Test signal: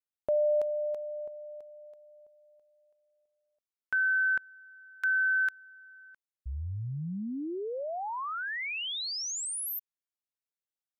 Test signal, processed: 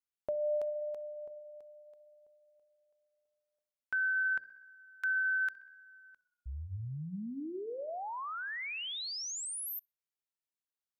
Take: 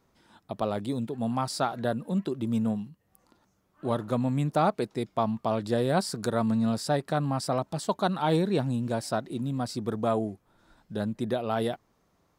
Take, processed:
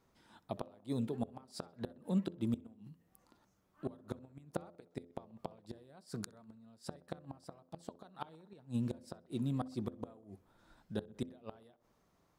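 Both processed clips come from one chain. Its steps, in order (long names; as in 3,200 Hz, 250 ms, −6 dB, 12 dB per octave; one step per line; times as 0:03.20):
gate with flip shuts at −19 dBFS, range −29 dB
hum removal 85.84 Hz, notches 7
tape delay 64 ms, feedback 73%, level −22 dB, low-pass 2,900 Hz
level −4.5 dB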